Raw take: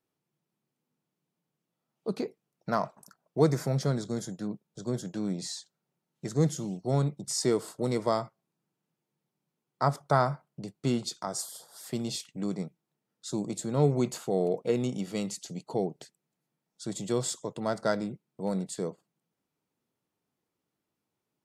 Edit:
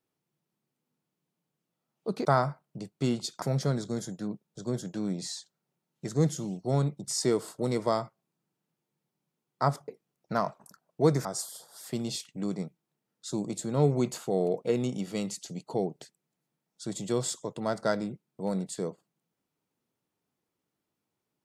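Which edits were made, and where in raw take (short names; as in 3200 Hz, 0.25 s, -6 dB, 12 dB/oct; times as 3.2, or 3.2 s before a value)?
2.25–3.62 swap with 10.08–11.25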